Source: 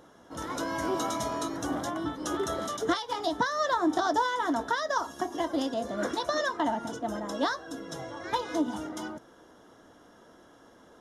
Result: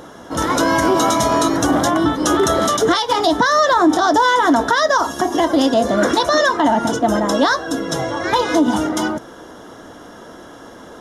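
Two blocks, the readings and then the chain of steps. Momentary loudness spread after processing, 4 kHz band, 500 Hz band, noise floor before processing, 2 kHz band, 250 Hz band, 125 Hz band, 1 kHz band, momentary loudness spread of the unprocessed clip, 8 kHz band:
7 LU, +15.0 dB, +15.0 dB, -57 dBFS, +15.0 dB, +15.0 dB, +16.5 dB, +14.0 dB, 11 LU, +16.0 dB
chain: maximiser +22.5 dB; gain -5 dB

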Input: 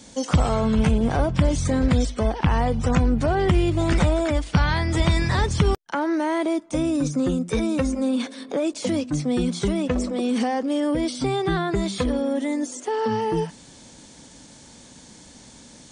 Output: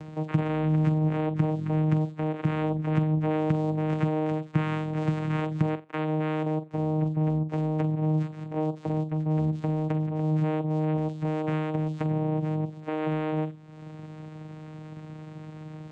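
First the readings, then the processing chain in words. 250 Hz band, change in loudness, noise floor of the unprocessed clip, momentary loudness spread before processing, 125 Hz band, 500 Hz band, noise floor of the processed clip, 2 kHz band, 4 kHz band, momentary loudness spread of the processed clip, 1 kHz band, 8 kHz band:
-5.0 dB, -5.0 dB, -47 dBFS, 5 LU, -1.0 dB, -6.5 dB, -43 dBFS, -10.0 dB, under -15 dB, 16 LU, -6.5 dB, under -25 dB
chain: Chebyshev low-pass 1300 Hz, order 2; tilt shelf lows -6.5 dB; upward compressor, threshold -30 dBFS; vocoder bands 4, saw 155 Hz; flutter echo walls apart 7.7 m, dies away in 0.23 s

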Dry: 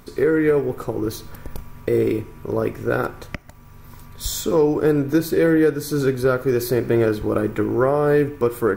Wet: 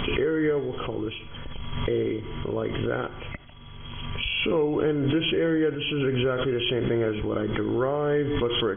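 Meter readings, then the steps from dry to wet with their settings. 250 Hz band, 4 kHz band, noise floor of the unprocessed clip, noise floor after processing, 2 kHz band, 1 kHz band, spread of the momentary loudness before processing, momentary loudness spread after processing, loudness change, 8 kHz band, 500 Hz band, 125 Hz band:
-6.0 dB, +7.5 dB, -43 dBFS, -41 dBFS, -3.0 dB, -6.0 dB, 14 LU, 14 LU, -6.0 dB, under -40 dB, -6.5 dB, -4.0 dB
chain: nonlinear frequency compression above 2000 Hz 4:1; backwards sustainer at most 27 dB/s; gain -7.5 dB

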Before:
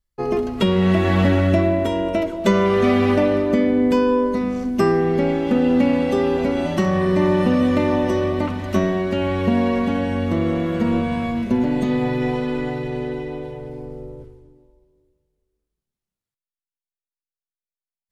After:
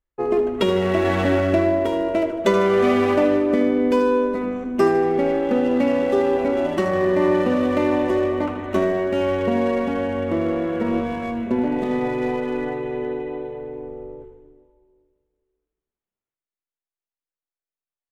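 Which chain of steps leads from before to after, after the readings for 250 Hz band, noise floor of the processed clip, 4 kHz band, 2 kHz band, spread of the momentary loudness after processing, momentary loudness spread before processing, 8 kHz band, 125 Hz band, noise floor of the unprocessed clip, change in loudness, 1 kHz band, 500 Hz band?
-3.0 dB, under -85 dBFS, -2.5 dB, -0.5 dB, 9 LU, 9 LU, n/a, -8.0 dB, under -85 dBFS, -1.0 dB, 0.0 dB, +1.0 dB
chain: Wiener smoothing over 9 samples; resonant low shelf 250 Hz -7 dB, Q 1.5; feedback echo 77 ms, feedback 55%, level -11 dB

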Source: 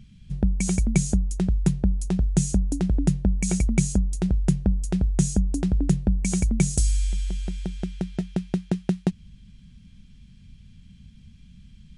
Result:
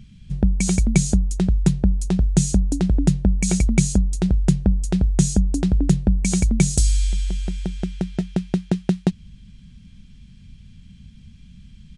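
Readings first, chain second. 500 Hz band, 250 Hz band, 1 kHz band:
+4.0 dB, +4.0 dB, +4.0 dB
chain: dynamic EQ 4000 Hz, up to +5 dB, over -50 dBFS, Q 1.9; downsampling 22050 Hz; gain +4 dB

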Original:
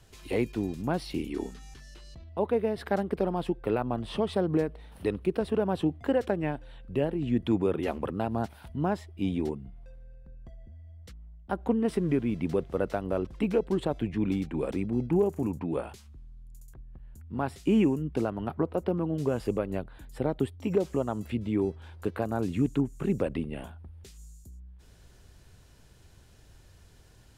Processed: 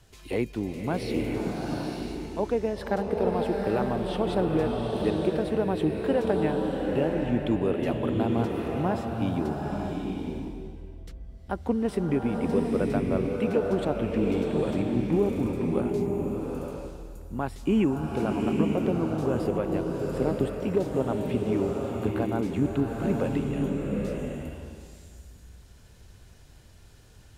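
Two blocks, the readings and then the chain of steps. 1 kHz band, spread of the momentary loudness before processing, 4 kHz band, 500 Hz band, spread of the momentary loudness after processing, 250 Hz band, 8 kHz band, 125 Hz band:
+3.0 dB, 17 LU, +3.0 dB, +3.0 dB, 9 LU, +3.0 dB, n/a, +3.0 dB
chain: bloom reverb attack 0.91 s, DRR 0 dB

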